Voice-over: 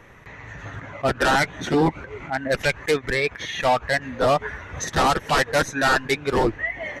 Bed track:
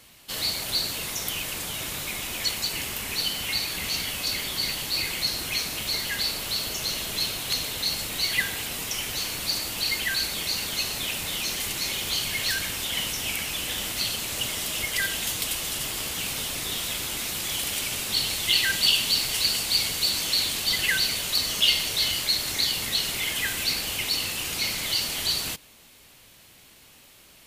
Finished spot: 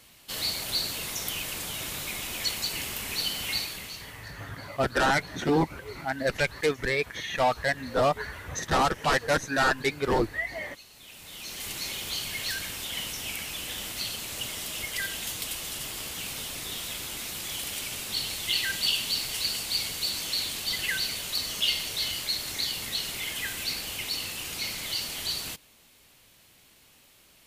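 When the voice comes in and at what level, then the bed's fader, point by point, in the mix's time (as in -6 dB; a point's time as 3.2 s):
3.75 s, -4.5 dB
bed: 3.58 s -2.5 dB
4.32 s -23 dB
10.88 s -23 dB
11.7 s -5.5 dB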